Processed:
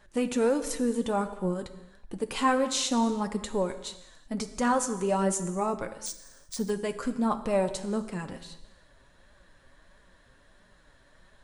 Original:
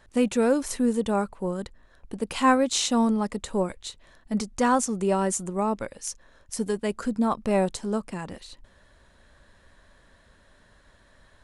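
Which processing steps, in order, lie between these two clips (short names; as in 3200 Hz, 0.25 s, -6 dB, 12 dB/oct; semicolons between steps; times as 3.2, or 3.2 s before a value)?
in parallel at -1.5 dB: limiter -16.5 dBFS, peak gain reduction 8.5 dB; on the sum: flange 1.5 Hz, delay 4.7 ms, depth 3.1 ms, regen +44%; non-linear reverb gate 0.4 s falling, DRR 10 dB; 6.06–6.7 careless resampling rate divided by 3×, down none, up hold; gain -3.5 dB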